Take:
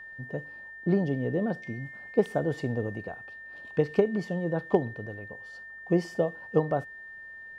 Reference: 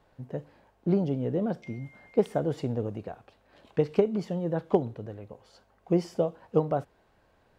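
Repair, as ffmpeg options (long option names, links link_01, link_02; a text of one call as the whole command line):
ffmpeg -i in.wav -af "bandreject=frequency=1800:width=30" out.wav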